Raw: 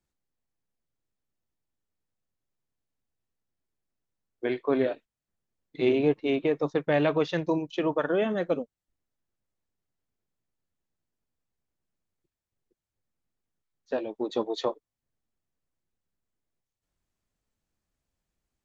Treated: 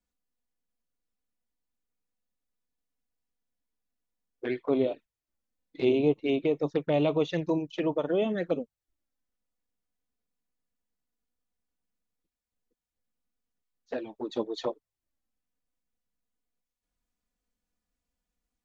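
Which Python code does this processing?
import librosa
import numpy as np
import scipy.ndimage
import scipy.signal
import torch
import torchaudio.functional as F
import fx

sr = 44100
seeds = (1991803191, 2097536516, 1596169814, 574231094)

y = fx.env_flanger(x, sr, rest_ms=4.1, full_db=-22.5)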